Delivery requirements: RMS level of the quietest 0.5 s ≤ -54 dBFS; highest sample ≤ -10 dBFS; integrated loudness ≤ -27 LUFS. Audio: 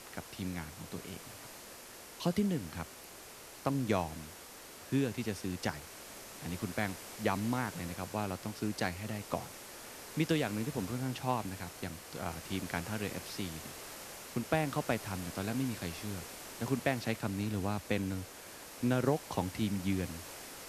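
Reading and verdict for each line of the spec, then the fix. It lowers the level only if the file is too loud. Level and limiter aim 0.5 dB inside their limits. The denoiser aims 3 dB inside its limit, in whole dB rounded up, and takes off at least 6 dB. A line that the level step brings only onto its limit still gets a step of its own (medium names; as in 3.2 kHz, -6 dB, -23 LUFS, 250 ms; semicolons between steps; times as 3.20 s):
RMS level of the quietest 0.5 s -51 dBFS: fail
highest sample -14.5 dBFS: pass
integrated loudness -37.0 LUFS: pass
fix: noise reduction 6 dB, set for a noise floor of -51 dBFS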